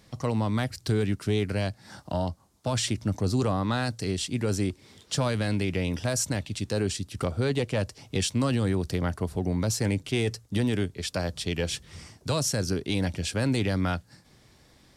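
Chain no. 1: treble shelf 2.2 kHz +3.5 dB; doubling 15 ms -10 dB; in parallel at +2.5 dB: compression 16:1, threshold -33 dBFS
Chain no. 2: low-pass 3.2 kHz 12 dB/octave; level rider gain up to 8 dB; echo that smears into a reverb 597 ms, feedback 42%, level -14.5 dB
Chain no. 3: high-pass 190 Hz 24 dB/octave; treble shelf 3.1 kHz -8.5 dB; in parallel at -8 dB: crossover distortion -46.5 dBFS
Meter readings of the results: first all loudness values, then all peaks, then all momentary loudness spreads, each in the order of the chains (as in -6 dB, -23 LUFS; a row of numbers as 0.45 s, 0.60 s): -24.5 LUFS, -21.0 LUFS, -29.0 LUFS; -11.0 dBFS, -7.0 dBFS, -15.0 dBFS; 5 LU, 8 LU, 6 LU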